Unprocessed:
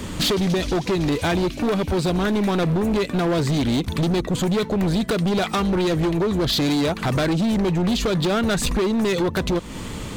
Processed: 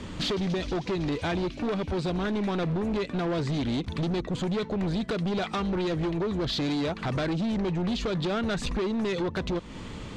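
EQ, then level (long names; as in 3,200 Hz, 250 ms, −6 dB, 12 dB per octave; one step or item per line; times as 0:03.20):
low-pass filter 5,300 Hz 12 dB per octave
−7.5 dB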